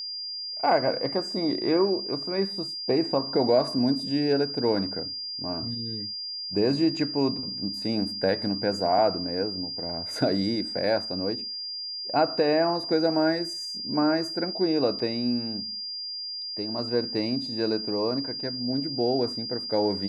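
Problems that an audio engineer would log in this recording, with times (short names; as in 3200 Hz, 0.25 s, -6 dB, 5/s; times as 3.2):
tone 4800 Hz -32 dBFS
14.99 gap 5 ms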